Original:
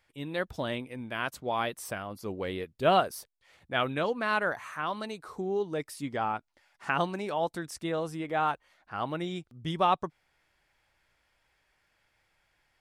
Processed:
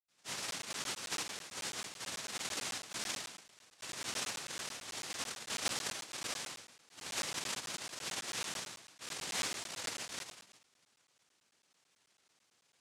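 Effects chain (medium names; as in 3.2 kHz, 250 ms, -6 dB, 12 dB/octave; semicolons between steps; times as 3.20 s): band-stop 810 Hz, Q 19; reverse; compression 6:1, threshold -35 dBFS, peak gain reduction 15.5 dB; reverse; peak limiter -32 dBFS, peak gain reduction 9 dB; feedback echo behind a band-pass 143 ms, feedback 47%, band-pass 1.3 kHz, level -12 dB; vibrato 0.32 Hz 5.3 cents; reverberation RT60 0.55 s, pre-delay 76 ms; noise-vocoded speech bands 1; crackling interface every 0.11 s, samples 512, zero, from 0.51 s; trim +9 dB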